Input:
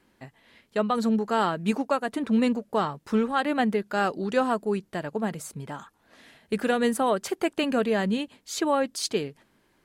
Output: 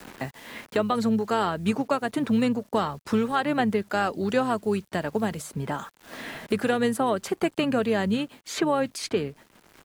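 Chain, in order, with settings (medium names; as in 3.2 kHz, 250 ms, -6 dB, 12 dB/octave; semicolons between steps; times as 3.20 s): word length cut 10-bit, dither none; harmony voices -12 st -15 dB; three bands compressed up and down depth 70%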